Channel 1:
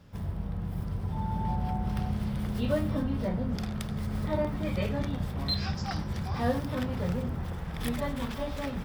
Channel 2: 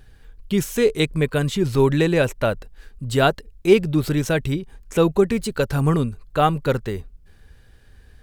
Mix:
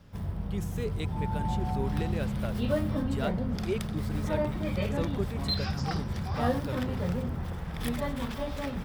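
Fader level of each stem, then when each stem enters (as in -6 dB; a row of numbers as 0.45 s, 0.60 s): 0.0 dB, -18.0 dB; 0.00 s, 0.00 s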